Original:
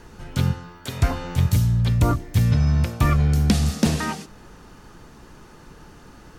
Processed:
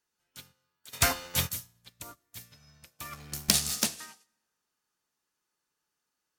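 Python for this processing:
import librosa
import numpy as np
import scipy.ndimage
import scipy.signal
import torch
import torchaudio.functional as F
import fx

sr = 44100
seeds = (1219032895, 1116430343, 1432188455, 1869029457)

y = fx.leveller(x, sr, passes=2, at=(3.13, 3.86))
y = fx.tilt_eq(y, sr, slope=4.5)
y = fx.leveller(y, sr, passes=3, at=(0.93, 1.5))
y = fx.rev_plate(y, sr, seeds[0], rt60_s=1.5, hf_ratio=0.75, predelay_ms=0, drr_db=12.0)
y = fx.upward_expand(y, sr, threshold_db=-33.0, expansion=2.5)
y = F.gain(torch.from_numpy(y), -6.5).numpy()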